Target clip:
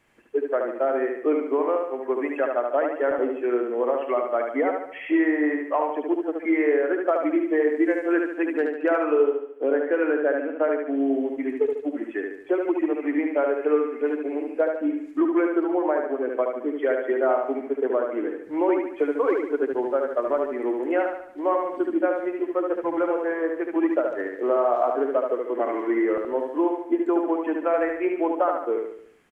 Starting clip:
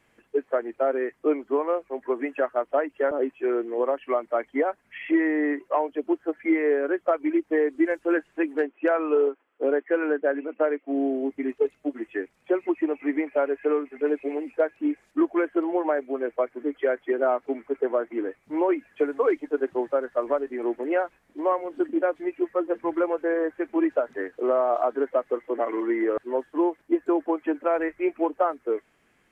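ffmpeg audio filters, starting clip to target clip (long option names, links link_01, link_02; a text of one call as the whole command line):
ffmpeg -i in.wav -filter_complex "[0:a]aecho=1:1:73|146|219|292|365|438:0.631|0.297|0.139|0.0655|0.0308|0.0145,asplit=3[link_01][link_02][link_03];[link_01]afade=type=out:start_time=14.14:duration=0.02[link_04];[link_02]adynamicequalizer=threshold=0.01:dfrequency=1500:dqfactor=0.7:tfrequency=1500:tqfactor=0.7:attack=5:release=100:ratio=0.375:range=2:mode=cutabove:tftype=highshelf,afade=type=in:start_time=14.14:duration=0.02,afade=type=out:start_time=16.29:duration=0.02[link_05];[link_03]afade=type=in:start_time=16.29:duration=0.02[link_06];[link_04][link_05][link_06]amix=inputs=3:normalize=0" out.wav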